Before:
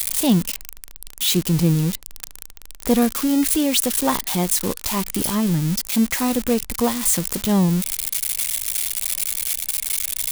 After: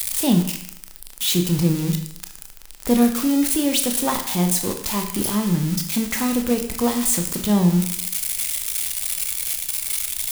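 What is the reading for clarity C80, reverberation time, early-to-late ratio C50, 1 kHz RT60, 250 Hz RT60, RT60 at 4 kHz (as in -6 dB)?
11.0 dB, 0.70 s, 8.5 dB, 0.70 s, 0.70 s, 0.70 s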